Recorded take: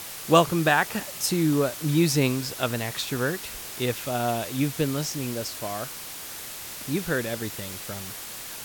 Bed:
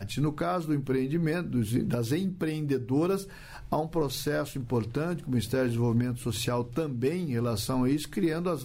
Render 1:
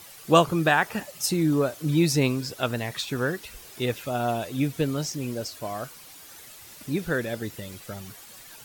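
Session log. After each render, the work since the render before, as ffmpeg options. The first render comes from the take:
-af "afftdn=nr=11:nf=-38"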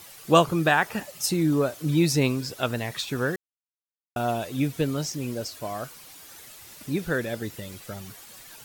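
-filter_complex "[0:a]asplit=3[s0][s1][s2];[s0]atrim=end=3.36,asetpts=PTS-STARTPTS,afade=t=out:st=3.356:d=0.004:c=hsin[s3];[s1]atrim=start=3.36:end=4.16,asetpts=PTS-STARTPTS,volume=0[s4];[s2]atrim=start=4.16,asetpts=PTS-STARTPTS,afade=t=in:d=0.004:c=hsin[s5];[s3][s4][s5]concat=n=3:v=0:a=1"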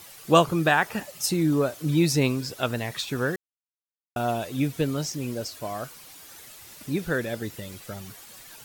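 -af anull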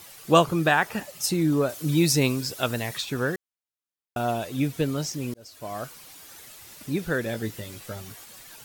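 -filter_complex "[0:a]asettb=1/sr,asplit=3[s0][s1][s2];[s0]atrim=end=1.694[s3];[s1]atrim=start=1.69:end=2.98,asetpts=PTS-STARTPTS,afade=t=in:d=0.004:c=qsin,afade=t=out:st=1.286:d=0.004:c=qsin,highshelf=f=4500:g=6.5[s4];[s2]atrim=start=2.976[s5];[s3][s4]acrossfade=d=0.004:c1=hsin:c2=qsin[s6];[s6][s5]acrossfade=d=0.004:c1=qsin:c2=hsin,asettb=1/sr,asplit=3[s7][s8][s9];[s7]atrim=end=7.244[s10];[s8]atrim=start=7.24:end=8.25,asetpts=PTS-STARTPTS,afade=t=in:d=0.004:c=qsin,afade=t=out:st=1.006:d=0.004:c=qsin,asplit=2[s11][s12];[s12]adelay=18,volume=0.501[s13];[s11][s13]amix=inputs=2:normalize=0,atrim=end_sample=44541[s14];[s9]atrim=start=8.246[s15];[s10][s14]acrossfade=d=0.004:c1=hsin:c2=qsin[s16];[s16][s15]acrossfade=d=0.004:c1=qsin:c2=hsin,asplit=2[s17][s18];[s17]atrim=end=5.34,asetpts=PTS-STARTPTS,afade=t=out:st=5.336:d=0.004:c=hsin[s19];[s18]atrim=start=5.34,asetpts=PTS-STARTPTS,afade=t=in:d=0.45[s20];[s19][s20]concat=n=2:v=0:a=1"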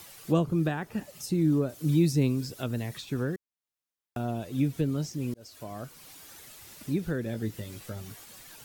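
-filter_complex "[0:a]acrossover=split=380[s0][s1];[s1]acompressor=threshold=0.00398:ratio=2[s2];[s0][s2]amix=inputs=2:normalize=0"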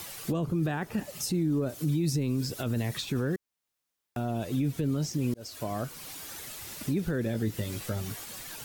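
-filter_complex "[0:a]asplit=2[s0][s1];[s1]acompressor=threshold=0.0178:ratio=6,volume=1.26[s2];[s0][s2]amix=inputs=2:normalize=0,alimiter=limit=0.0891:level=0:latency=1:release=12"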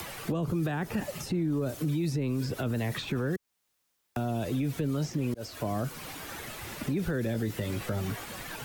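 -filter_complex "[0:a]acrossover=split=150|420|2800[s0][s1][s2][s3];[s0]acompressor=threshold=0.01:ratio=4[s4];[s1]acompressor=threshold=0.0126:ratio=4[s5];[s2]acompressor=threshold=0.0112:ratio=4[s6];[s3]acompressor=threshold=0.002:ratio=4[s7];[s4][s5][s6][s7]amix=inputs=4:normalize=0,asplit=2[s8][s9];[s9]alimiter=level_in=2.66:limit=0.0631:level=0:latency=1:release=32,volume=0.376,volume=1.33[s10];[s8][s10]amix=inputs=2:normalize=0"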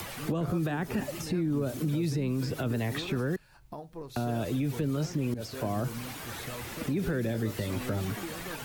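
-filter_complex "[1:a]volume=0.2[s0];[0:a][s0]amix=inputs=2:normalize=0"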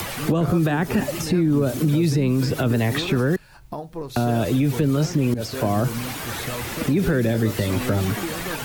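-af "volume=3.16"

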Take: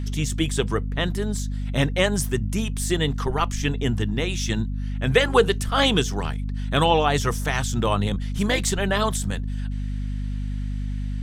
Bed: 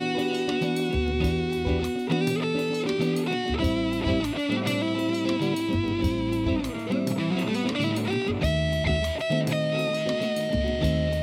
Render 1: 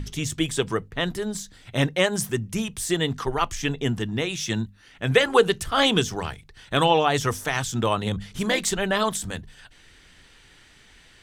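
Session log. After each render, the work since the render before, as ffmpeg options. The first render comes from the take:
-af "bandreject=f=50:t=h:w=6,bandreject=f=100:t=h:w=6,bandreject=f=150:t=h:w=6,bandreject=f=200:t=h:w=6,bandreject=f=250:t=h:w=6"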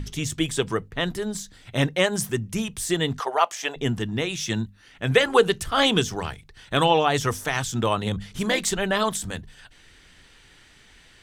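-filter_complex "[0:a]asettb=1/sr,asplit=3[s0][s1][s2];[s0]atrim=end=3.204[s3];[s1]atrim=start=3.2:end=3.76,asetpts=PTS-STARTPTS,afade=t=in:d=0.004:c=qsin,afade=t=out:st=0.556:d=0.004:c=qsin,highpass=f=630:t=q:w=2.7[s4];[s2]atrim=start=3.756[s5];[s3][s4]acrossfade=d=0.004:c1=hsin:c2=qsin[s6];[s6][s5]acrossfade=d=0.004:c1=qsin:c2=hsin"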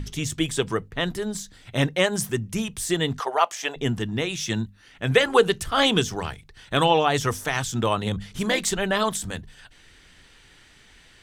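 -af anull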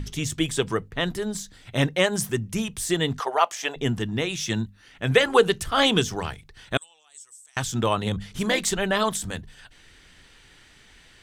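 -filter_complex "[0:a]asettb=1/sr,asplit=3[s0][s1][s2];[s0]atrim=end=6.774[s3];[s1]atrim=start=6.77:end=7.57,asetpts=PTS-STARTPTS,afade=t=in:d=0.004:c=qsin,afade=t=out:st=0.796:d=0.004:c=qsin,bandpass=f=8000:t=q:w=13[s4];[s2]atrim=start=7.566[s5];[s3][s4]acrossfade=d=0.004:c1=hsin:c2=qsin[s6];[s6][s5]acrossfade=d=0.004:c1=qsin:c2=hsin"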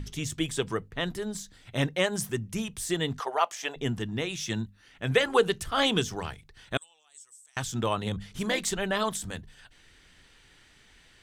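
-af "volume=0.562"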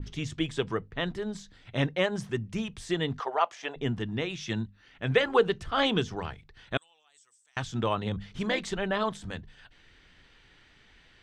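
-af "lowpass=4200,adynamicequalizer=threshold=0.01:dfrequency=1700:dqfactor=0.7:tfrequency=1700:tqfactor=0.7:attack=5:release=100:ratio=0.375:range=2.5:mode=cutabove:tftype=highshelf"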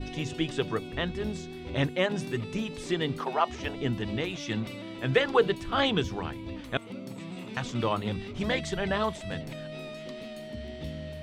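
-filter_complex "[1:a]volume=0.2[s0];[0:a][s0]amix=inputs=2:normalize=0"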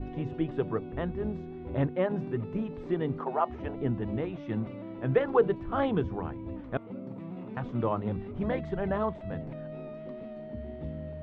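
-af "lowpass=1100"

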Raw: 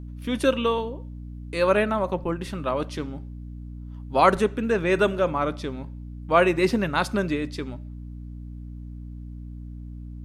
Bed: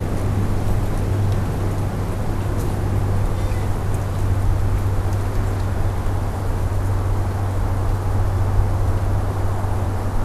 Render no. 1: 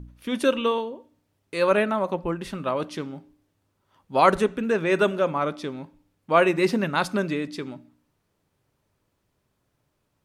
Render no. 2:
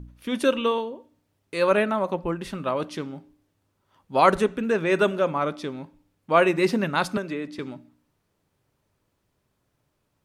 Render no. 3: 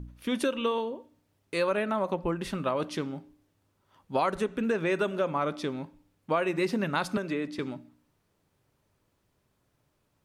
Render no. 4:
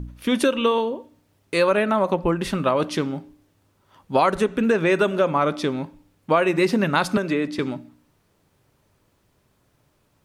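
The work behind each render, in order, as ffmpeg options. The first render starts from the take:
-af "bandreject=f=60:t=h:w=4,bandreject=f=120:t=h:w=4,bandreject=f=180:t=h:w=4,bandreject=f=240:t=h:w=4,bandreject=f=300:t=h:w=4"
-filter_complex "[0:a]asettb=1/sr,asplit=3[s0][s1][s2];[s0]atrim=end=7.174[s3];[s1]atrim=start=7.17:end=7.59,asetpts=PTS-STARTPTS,afade=t=in:d=0.004:c=qsin,afade=t=out:st=0.416:d=0.004:c=qsin,acrossover=split=240|2600[s4][s5][s6];[s4]acompressor=threshold=0.00794:ratio=4[s7];[s5]acompressor=threshold=0.0447:ratio=4[s8];[s6]acompressor=threshold=0.00316:ratio=4[s9];[s7][s8][s9]amix=inputs=3:normalize=0[s10];[s2]atrim=start=7.586[s11];[s3][s10]acrossfade=d=0.004:c1=hsin:c2=qsin[s12];[s12][s11]acrossfade=d=0.004:c1=qsin:c2=hsin"
-af "acompressor=threshold=0.0631:ratio=6"
-af "volume=2.66"

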